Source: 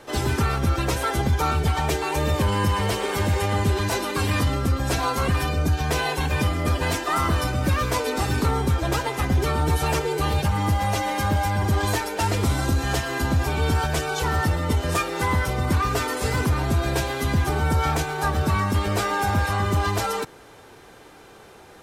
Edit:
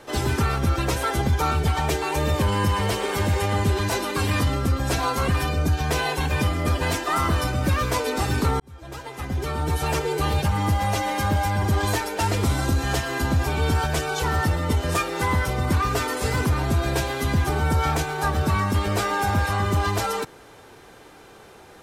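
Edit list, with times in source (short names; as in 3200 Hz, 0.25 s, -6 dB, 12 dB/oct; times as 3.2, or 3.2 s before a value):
8.6–10.11 fade in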